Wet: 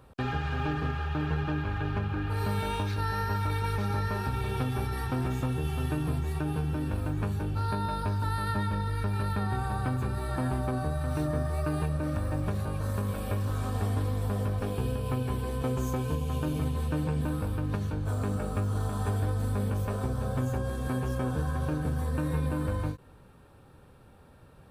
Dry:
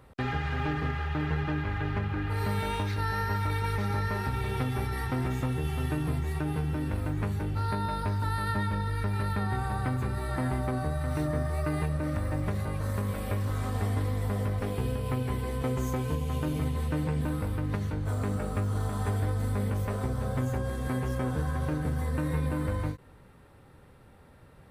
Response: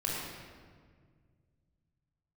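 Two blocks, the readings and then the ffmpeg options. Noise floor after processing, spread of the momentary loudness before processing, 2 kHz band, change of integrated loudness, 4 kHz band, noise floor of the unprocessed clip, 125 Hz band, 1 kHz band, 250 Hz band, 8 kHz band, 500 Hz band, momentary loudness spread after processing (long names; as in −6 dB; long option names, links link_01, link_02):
−54 dBFS, 2 LU, −2.0 dB, 0.0 dB, 0.0 dB, −54 dBFS, 0.0 dB, 0.0 dB, 0.0 dB, 0.0 dB, 0.0 dB, 2 LU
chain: -af "bandreject=frequency=2000:width=5.4"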